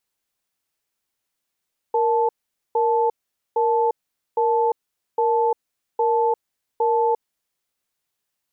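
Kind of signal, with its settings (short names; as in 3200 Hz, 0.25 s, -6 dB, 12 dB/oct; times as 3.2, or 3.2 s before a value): cadence 466 Hz, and 875 Hz, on 0.35 s, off 0.46 s, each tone -19 dBFS 5.67 s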